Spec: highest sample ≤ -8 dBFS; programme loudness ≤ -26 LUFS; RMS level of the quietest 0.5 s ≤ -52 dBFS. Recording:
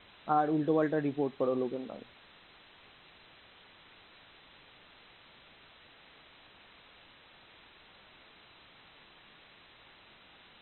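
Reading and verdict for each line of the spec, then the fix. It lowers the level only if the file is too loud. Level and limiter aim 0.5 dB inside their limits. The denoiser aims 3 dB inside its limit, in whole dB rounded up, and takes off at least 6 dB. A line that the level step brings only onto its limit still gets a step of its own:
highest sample -14.5 dBFS: pass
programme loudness -31.5 LUFS: pass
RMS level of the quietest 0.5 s -58 dBFS: pass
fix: none needed

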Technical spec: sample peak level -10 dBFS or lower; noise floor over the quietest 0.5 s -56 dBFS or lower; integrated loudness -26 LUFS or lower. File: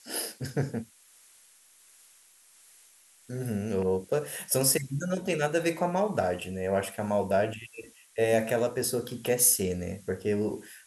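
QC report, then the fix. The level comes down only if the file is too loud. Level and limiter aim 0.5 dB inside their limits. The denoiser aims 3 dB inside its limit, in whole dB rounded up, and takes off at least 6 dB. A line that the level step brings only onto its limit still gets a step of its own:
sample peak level -9.0 dBFS: fail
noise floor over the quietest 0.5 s -59 dBFS: pass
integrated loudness -28.5 LUFS: pass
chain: peak limiter -10.5 dBFS

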